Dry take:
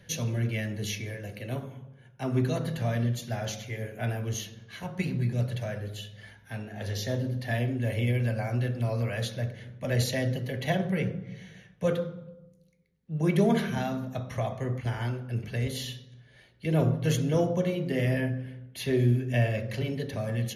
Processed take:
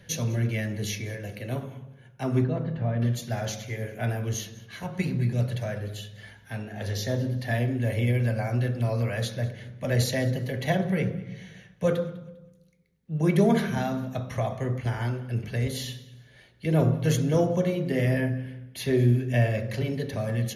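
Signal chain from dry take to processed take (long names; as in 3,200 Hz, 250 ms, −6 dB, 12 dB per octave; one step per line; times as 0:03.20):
0:02.44–0:03.02: head-to-tape spacing loss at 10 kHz 44 dB
on a send: feedback echo with a high-pass in the loop 200 ms, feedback 31%, high-pass 680 Hz, level −22 dB
on the sum: dynamic equaliser 2,900 Hz, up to −4 dB, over −51 dBFS, Q 3
level +2.5 dB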